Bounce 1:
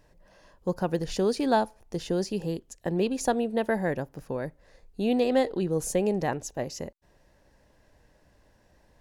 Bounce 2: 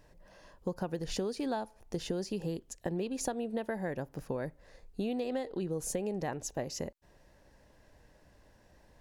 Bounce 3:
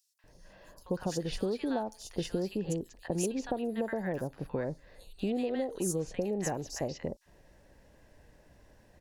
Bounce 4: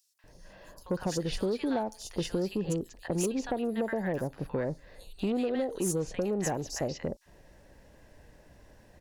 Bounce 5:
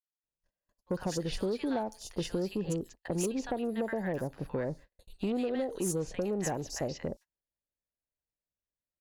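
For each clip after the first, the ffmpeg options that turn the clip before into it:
-af "acompressor=threshold=-31dB:ratio=10"
-filter_complex "[0:a]acrossover=split=1100|4600[a][b][c];[b]adelay=190[d];[a]adelay=240[e];[e][d][c]amix=inputs=3:normalize=0,volume=2.5dB"
-af "asoftclip=type=tanh:threshold=-24.5dB,volume=3.5dB"
-af "agate=range=-43dB:threshold=-45dB:ratio=16:detection=peak,volume=-2dB"

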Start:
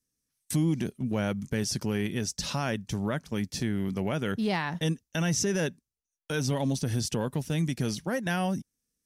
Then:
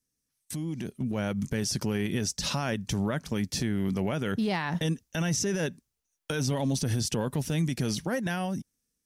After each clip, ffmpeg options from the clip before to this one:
-af "alimiter=level_in=4dB:limit=-24dB:level=0:latency=1:release=120,volume=-4dB,dynaudnorm=f=310:g=7:m=8dB"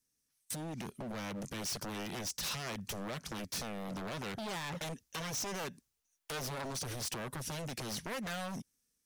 -af "acompressor=threshold=-32dB:ratio=2.5,aeval=exprs='0.0237*(abs(mod(val(0)/0.0237+3,4)-2)-1)':c=same,lowshelf=f=490:g=-6,volume=1dB"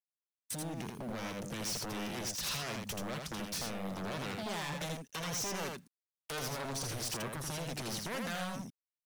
-filter_complex "[0:a]acrusher=bits=10:mix=0:aa=0.000001,asplit=2[a][b];[b]aecho=0:1:82:0.631[c];[a][c]amix=inputs=2:normalize=0"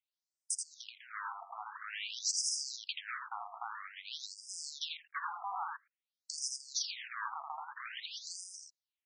-af "afftfilt=real='re*between(b*sr/1024,930*pow(7000/930,0.5+0.5*sin(2*PI*0.5*pts/sr))/1.41,930*pow(7000/930,0.5+0.5*sin(2*PI*0.5*pts/sr))*1.41)':imag='im*between(b*sr/1024,930*pow(7000/930,0.5+0.5*sin(2*PI*0.5*pts/sr))/1.41,930*pow(7000/930,0.5+0.5*sin(2*PI*0.5*pts/sr))*1.41)':win_size=1024:overlap=0.75,volume=7dB"

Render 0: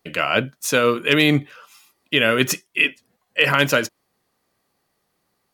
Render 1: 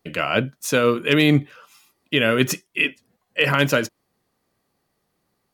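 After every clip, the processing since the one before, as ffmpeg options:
-af "lowshelf=f=450:g=6,volume=-3dB"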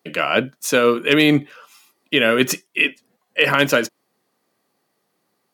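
-af "highpass=210,volume=3dB"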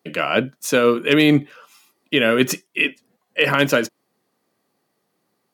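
-af "lowshelf=f=450:g=4,volume=-2dB"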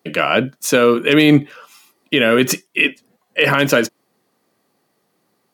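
-af "alimiter=level_in=6dB:limit=-1dB:release=50:level=0:latency=1,volume=-1dB"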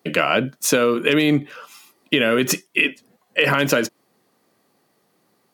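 -af "acompressor=threshold=-15dB:ratio=6,volume=1.5dB"

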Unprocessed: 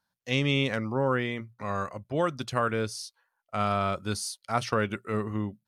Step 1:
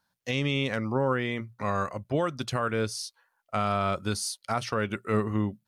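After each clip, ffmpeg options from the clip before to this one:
-af "alimiter=limit=-21dB:level=0:latency=1:release=374,volume=4.5dB"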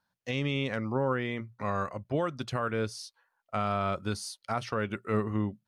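-af "highshelf=f=5.1k:g=-8,volume=-2.5dB"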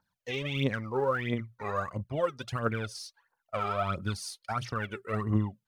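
-af "aphaser=in_gain=1:out_gain=1:delay=2.6:decay=0.73:speed=1.5:type=triangular,volume=-3.5dB"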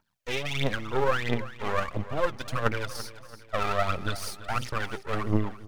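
-af "aeval=exprs='max(val(0),0)':c=same,aecho=1:1:337|674|1011|1348:0.168|0.0789|0.0371|0.0174,volume=7dB"

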